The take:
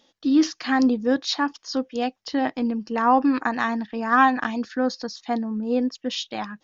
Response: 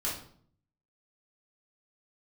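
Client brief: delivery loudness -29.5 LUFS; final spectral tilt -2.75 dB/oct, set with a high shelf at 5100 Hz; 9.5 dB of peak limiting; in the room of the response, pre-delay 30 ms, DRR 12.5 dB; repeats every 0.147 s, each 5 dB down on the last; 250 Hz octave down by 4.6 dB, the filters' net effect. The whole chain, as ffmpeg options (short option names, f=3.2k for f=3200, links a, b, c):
-filter_complex "[0:a]equalizer=f=250:t=o:g=-5,highshelf=f=5.1k:g=6,alimiter=limit=-15.5dB:level=0:latency=1,aecho=1:1:147|294|441|588|735|882|1029:0.562|0.315|0.176|0.0988|0.0553|0.031|0.0173,asplit=2[a][b];[1:a]atrim=start_sample=2205,adelay=30[c];[b][c]afir=irnorm=-1:irlink=0,volume=-17.5dB[d];[a][d]amix=inputs=2:normalize=0,volume=-4dB"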